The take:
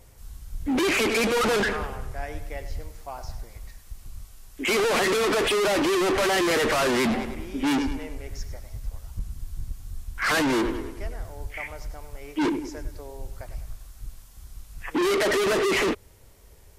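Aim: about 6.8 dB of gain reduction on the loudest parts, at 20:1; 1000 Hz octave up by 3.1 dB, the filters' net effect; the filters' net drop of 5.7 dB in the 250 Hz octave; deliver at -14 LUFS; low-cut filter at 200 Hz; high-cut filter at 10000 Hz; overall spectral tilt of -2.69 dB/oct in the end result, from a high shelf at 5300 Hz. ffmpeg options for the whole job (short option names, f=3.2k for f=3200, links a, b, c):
-af "highpass=200,lowpass=10k,equalizer=f=250:t=o:g=-7,equalizer=f=1k:t=o:g=4.5,highshelf=f=5.3k:g=-4,acompressor=threshold=-25dB:ratio=20,volume=17dB"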